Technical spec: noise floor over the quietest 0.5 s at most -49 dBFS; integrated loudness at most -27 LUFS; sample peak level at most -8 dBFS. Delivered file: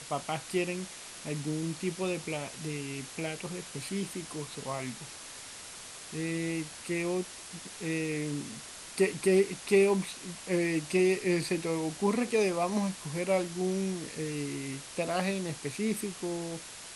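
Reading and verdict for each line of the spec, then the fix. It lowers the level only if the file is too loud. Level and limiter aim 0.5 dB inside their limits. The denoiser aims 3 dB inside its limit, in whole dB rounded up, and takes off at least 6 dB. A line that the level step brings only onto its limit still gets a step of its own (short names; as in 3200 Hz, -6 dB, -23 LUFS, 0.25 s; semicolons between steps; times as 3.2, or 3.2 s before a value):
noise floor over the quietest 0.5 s -46 dBFS: fail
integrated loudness -32.0 LUFS: OK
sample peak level -12.0 dBFS: OK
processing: denoiser 6 dB, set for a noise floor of -46 dBFS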